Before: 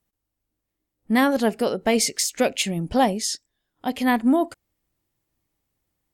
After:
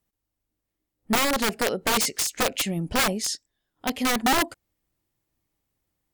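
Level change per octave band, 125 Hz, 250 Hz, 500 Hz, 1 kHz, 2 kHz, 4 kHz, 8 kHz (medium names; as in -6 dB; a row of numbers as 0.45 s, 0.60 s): -1.0 dB, -7.0 dB, -5.5 dB, -1.5 dB, +1.5 dB, +2.0 dB, 0.0 dB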